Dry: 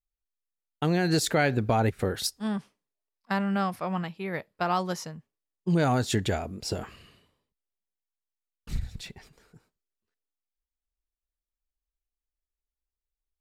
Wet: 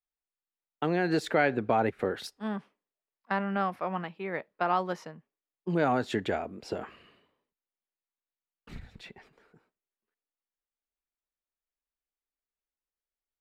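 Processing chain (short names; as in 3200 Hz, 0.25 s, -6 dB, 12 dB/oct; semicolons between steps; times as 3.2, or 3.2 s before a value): three-band isolator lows -15 dB, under 210 Hz, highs -17 dB, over 3100 Hz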